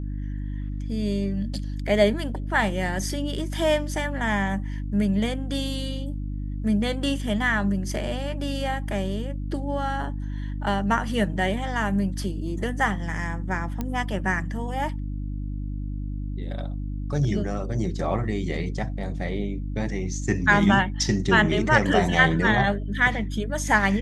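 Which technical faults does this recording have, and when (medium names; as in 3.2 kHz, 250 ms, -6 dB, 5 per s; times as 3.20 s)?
hum 50 Hz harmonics 6 -30 dBFS
13.81 s: pop -15 dBFS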